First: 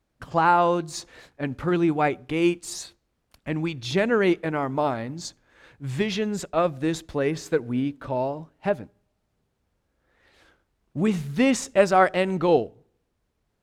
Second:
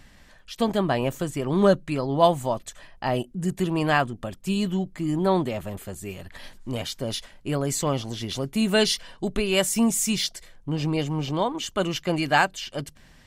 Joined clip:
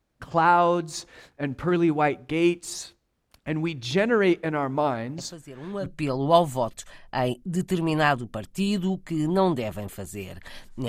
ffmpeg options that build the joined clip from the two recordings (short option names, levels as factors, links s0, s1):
-filter_complex "[1:a]asplit=2[s0][s1];[0:a]apad=whole_dur=10.88,atrim=end=10.88,atrim=end=5.862[s2];[s1]atrim=start=1.748:end=6.77[s3];[s0]atrim=start=1.07:end=1.75,asetpts=PTS-STARTPTS,volume=0.2,afade=t=in:d=0.004:c=hsin,afade=t=out:st=0.676:d=0.004:c=hsin,adelay=5180[s4];[s2][s3]acrossfade=d=0.004:c1=hsin:c2=hsin[s5];[s5][s4]amix=inputs=2:normalize=0"